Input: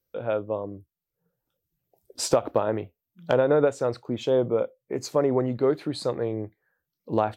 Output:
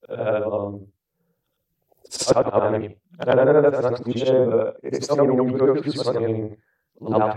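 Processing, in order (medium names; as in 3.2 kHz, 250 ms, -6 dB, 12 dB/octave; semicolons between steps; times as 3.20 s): short-time spectra conjugated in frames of 198 ms; low-pass that closes with the level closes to 2.1 kHz, closed at -21 dBFS; trim +8.5 dB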